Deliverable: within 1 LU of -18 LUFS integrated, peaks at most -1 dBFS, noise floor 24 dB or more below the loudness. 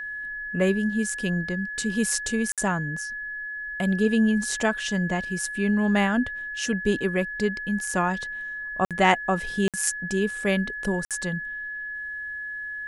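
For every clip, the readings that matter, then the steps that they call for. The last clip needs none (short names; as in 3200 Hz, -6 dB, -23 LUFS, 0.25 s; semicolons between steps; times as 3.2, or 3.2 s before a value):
dropouts 4; longest dropout 57 ms; steady tone 1700 Hz; tone level -31 dBFS; loudness -26.0 LUFS; peak -5.5 dBFS; loudness target -18.0 LUFS
-> interpolate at 2.52/8.85/9.68/11.05, 57 ms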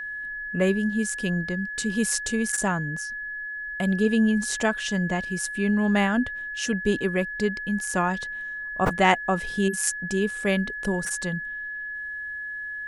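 dropouts 0; steady tone 1700 Hz; tone level -31 dBFS
-> notch 1700 Hz, Q 30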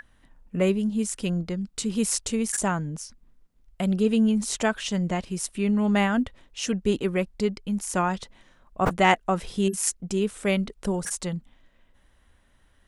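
steady tone none; loudness -26.0 LUFS; peak -5.0 dBFS; loudness target -18.0 LUFS
-> gain +8 dB; limiter -1 dBFS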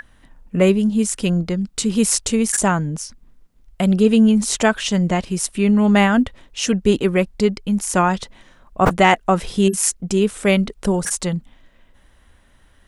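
loudness -18.0 LUFS; peak -1.0 dBFS; noise floor -54 dBFS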